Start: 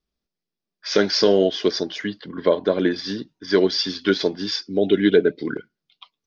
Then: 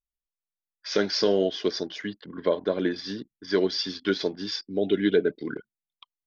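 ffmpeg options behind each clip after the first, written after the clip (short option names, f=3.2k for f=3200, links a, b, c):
-af "anlmdn=0.251,volume=-6dB"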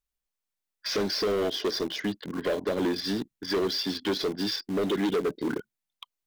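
-filter_complex "[0:a]acrossover=split=670|3700[a][b][c];[a]acompressor=threshold=-23dB:ratio=4[d];[b]acompressor=threshold=-41dB:ratio=4[e];[c]acompressor=threshold=-39dB:ratio=4[f];[d][e][f]amix=inputs=3:normalize=0,asplit=2[g][h];[h]acrusher=bits=5:mix=0:aa=0.000001,volume=-10dB[i];[g][i]amix=inputs=2:normalize=0,asoftclip=type=tanh:threshold=-27.5dB,volume=5dB"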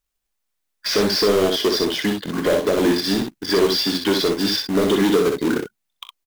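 -filter_complex "[0:a]acrusher=bits=3:mode=log:mix=0:aa=0.000001,asplit=2[a][b];[b]aecho=0:1:24|41|63:0.2|0.178|0.562[c];[a][c]amix=inputs=2:normalize=0,volume=7.5dB"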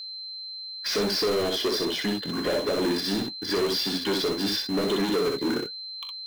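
-af "asoftclip=type=tanh:threshold=-17dB,flanger=delay=4.1:depth=5.6:regen=-59:speed=1:shape=triangular,aeval=exprs='val(0)+0.0178*sin(2*PI*4100*n/s)':c=same"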